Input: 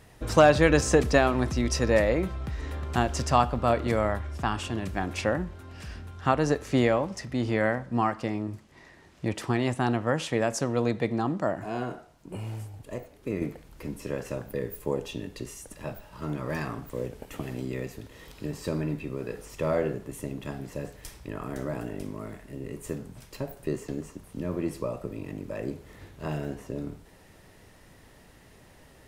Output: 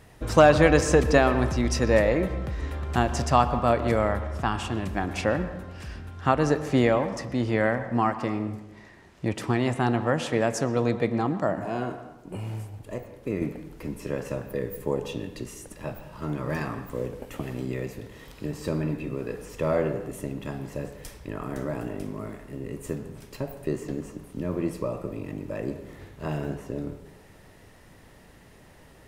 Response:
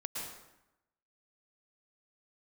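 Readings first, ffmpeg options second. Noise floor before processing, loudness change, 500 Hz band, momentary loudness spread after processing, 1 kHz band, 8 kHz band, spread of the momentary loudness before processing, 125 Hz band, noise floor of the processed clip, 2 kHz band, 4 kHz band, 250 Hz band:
−55 dBFS, +2.0 dB, +2.0 dB, 17 LU, +2.0 dB, −0.5 dB, 17 LU, +2.0 dB, −52 dBFS, +1.5 dB, 0.0 dB, +2.0 dB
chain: -filter_complex "[0:a]asplit=2[link_01][link_02];[1:a]atrim=start_sample=2205,lowpass=3500[link_03];[link_02][link_03]afir=irnorm=-1:irlink=0,volume=-9dB[link_04];[link_01][link_04]amix=inputs=2:normalize=0"

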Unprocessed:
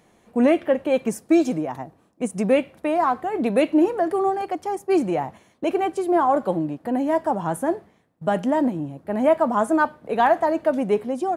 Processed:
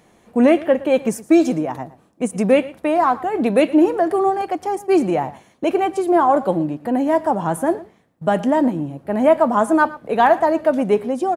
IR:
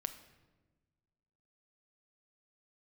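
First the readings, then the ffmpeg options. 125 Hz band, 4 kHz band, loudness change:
+4.0 dB, +4.0 dB, +4.0 dB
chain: -af "aecho=1:1:115:0.112,volume=4dB"

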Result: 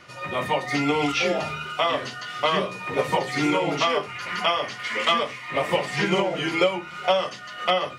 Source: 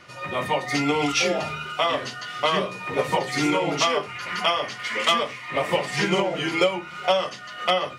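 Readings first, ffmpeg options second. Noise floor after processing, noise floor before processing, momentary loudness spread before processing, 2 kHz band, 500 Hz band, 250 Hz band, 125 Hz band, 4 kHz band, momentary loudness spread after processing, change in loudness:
−39 dBFS, −39 dBFS, 7 LU, 0.0 dB, 0.0 dB, 0.0 dB, 0.0 dB, −1.5 dB, 6 LU, −0.5 dB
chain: -filter_complex "[0:a]acrossover=split=4100[link_01][link_02];[link_02]acompressor=threshold=-39dB:ratio=4:attack=1:release=60[link_03];[link_01][link_03]amix=inputs=2:normalize=0"

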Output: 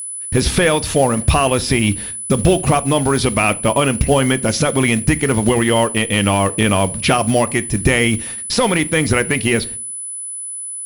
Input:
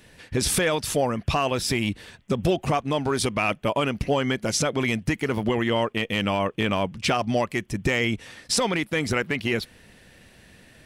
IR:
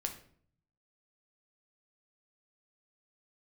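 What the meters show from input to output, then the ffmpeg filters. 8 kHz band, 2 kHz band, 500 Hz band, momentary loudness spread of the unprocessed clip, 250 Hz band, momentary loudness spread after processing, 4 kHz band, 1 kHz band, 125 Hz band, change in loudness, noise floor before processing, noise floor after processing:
+12.0 dB, +8.0 dB, +8.5 dB, 4 LU, +9.0 dB, 6 LU, +7.0 dB, +8.0 dB, +10.5 dB, +8.5 dB, −54 dBFS, −28 dBFS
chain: -filter_complex "[0:a]equalizer=frequency=63:width_type=o:width=0.3:gain=3.5,agate=range=-52dB:threshold=-42dB:ratio=16:detection=peak,lowshelf=frequency=100:gain=6,asplit=2[link_01][link_02];[1:a]atrim=start_sample=2205,asetrate=70560,aresample=44100[link_03];[link_02][link_03]afir=irnorm=-1:irlink=0,volume=-3dB[link_04];[link_01][link_04]amix=inputs=2:normalize=0,acrusher=bits=6:mode=log:mix=0:aa=0.000001,acrossover=split=5100[link_05][link_06];[link_06]acompressor=threshold=-36dB:ratio=4:attack=1:release=60[link_07];[link_05][link_07]amix=inputs=2:normalize=0,aeval=exprs='val(0)+0.0316*sin(2*PI*10000*n/s)':channel_layout=same,volume=5dB"

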